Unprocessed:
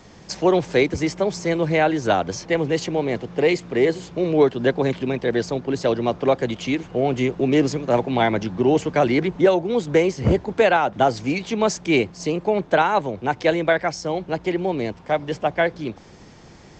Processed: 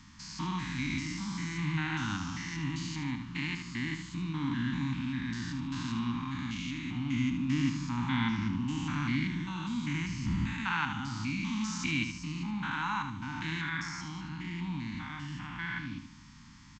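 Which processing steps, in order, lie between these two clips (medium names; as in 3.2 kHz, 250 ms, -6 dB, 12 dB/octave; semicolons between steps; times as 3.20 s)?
spectrogram pixelated in time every 200 ms; elliptic band-stop 270–980 Hz, stop band 40 dB; feedback delay 75 ms, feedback 38%, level -8 dB; trim -4.5 dB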